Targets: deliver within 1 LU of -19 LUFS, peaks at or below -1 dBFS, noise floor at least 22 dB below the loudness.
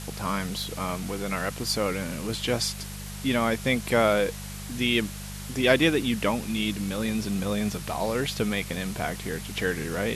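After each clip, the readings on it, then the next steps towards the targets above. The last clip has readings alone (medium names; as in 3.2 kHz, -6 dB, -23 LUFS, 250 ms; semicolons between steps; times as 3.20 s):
hum 50 Hz; highest harmonic 200 Hz; hum level -37 dBFS; noise floor -38 dBFS; noise floor target -49 dBFS; loudness -27.0 LUFS; peak level -6.5 dBFS; loudness target -19.0 LUFS
-> de-hum 50 Hz, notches 4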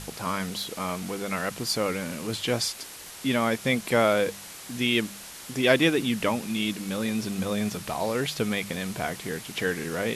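hum not found; noise floor -43 dBFS; noise floor target -49 dBFS
-> noise reduction 6 dB, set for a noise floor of -43 dBFS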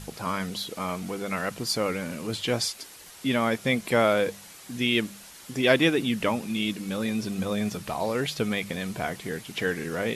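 noise floor -47 dBFS; noise floor target -50 dBFS
-> noise reduction 6 dB, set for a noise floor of -47 dBFS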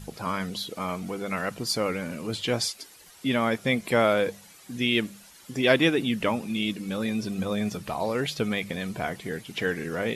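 noise floor -52 dBFS; loudness -27.5 LUFS; peak level -6.5 dBFS; loudness target -19.0 LUFS
-> trim +8.5 dB; peak limiter -1 dBFS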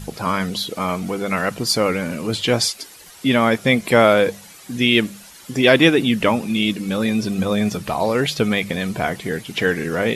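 loudness -19.0 LUFS; peak level -1.0 dBFS; noise floor -43 dBFS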